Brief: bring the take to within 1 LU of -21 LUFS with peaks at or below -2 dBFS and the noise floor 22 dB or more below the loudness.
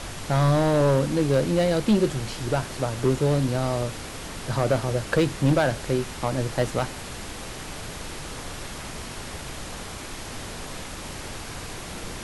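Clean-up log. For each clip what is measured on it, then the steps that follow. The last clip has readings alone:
clipped 1.1%; flat tops at -14.0 dBFS; noise floor -37 dBFS; noise floor target -48 dBFS; loudness -26.0 LUFS; peak -14.0 dBFS; loudness target -21.0 LUFS
-> clip repair -14 dBFS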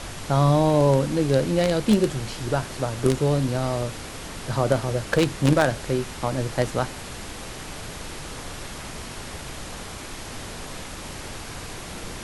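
clipped 0.0%; noise floor -37 dBFS; noise floor target -45 dBFS
-> noise print and reduce 8 dB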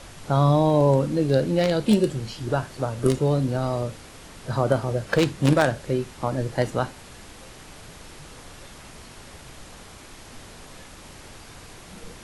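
noise floor -45 dBFS; loudness -23.0 LUFS; peak -5.0 dBFS; loudness target -21.0 LUFS
-> gain +2 dB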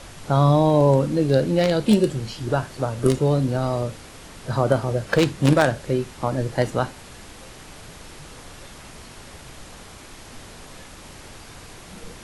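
loudness -21.0 LUFS; peak -3.0 dBFS; noise floor -43 dBFS

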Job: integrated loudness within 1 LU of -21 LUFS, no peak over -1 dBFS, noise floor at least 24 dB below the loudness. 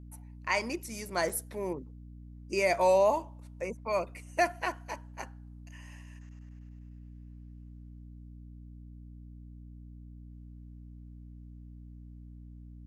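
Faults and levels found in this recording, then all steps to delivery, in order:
dropouts 1; longest dropout 5.0 ms; hum 60 Hz; harmonics up to 300 Hz; hum level -45 dBFS; loudness -31.0 LUFS; peak -15.0 dBFS; loudness target -21.0 LUFS
-> interpolate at 1.29, 5 ms; notches 60/120/180/240/300 Hz; gain +10 dB

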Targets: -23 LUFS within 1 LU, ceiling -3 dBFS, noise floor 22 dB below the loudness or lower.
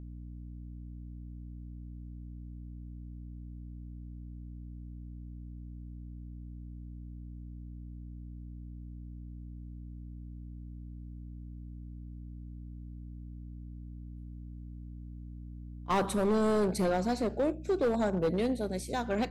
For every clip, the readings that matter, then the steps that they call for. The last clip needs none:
clipped 1.2%; flat tops at -23.5 dBFS; hum 60 Hz; harmonics up to 300 Hz; hum level -42 dBFS; loudness -37.5 LUFS; peak -23.5 dBFS; loudness target -23.0 LUFS
-> clip repair -23.5 dBFS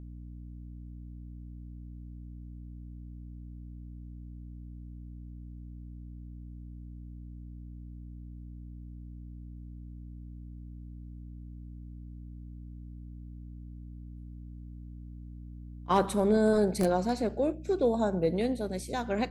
clipped 0.0%; hum 60 Hz; harmonics up to 300 Hz; hum level -42 dBFS
-> notches 60/120/180/240/300 Hz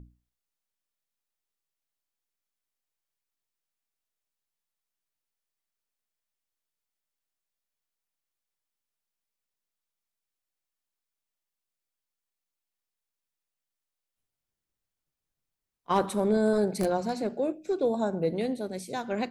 hum none; loudness -28.5 LUFS; peak -13.5 dBFS; loudness target -23.0 LUFS
-> gain +5.5 dB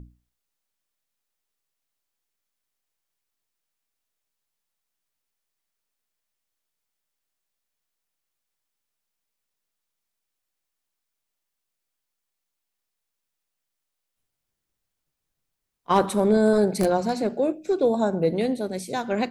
loudness -23.0 LUFS; peak -8.0 dBFS; noise floor -82 dBFS

